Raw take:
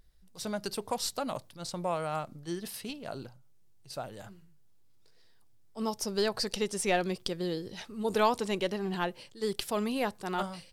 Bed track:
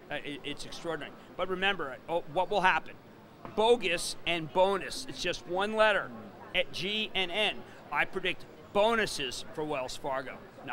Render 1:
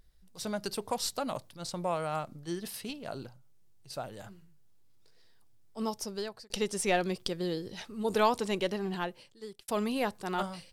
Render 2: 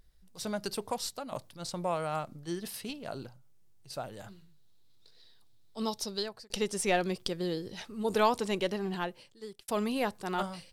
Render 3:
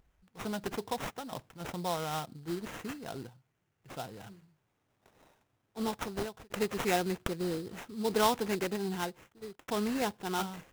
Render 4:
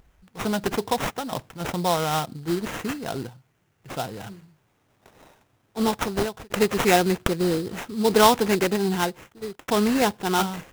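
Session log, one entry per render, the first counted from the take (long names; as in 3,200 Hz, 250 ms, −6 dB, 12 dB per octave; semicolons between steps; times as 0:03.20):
0:05.80–0:06.50: fade out; 0:08.79–0:09.68: fade out
0:00.82–0:01.32: fade out, to −9.5 dB; 0:04.28–0:06.23: parametric band 3,900 Hz +13 dB 0.48 octaves
notch comb filter 590 Hz; sample-rate reduction 4,500 Hz, jitter 20%
level +11 dB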